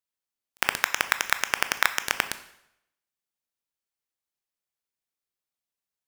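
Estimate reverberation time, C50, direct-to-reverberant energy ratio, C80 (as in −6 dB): 0.80 s, 13.0 dB, 10.0 dB, 15.5 dB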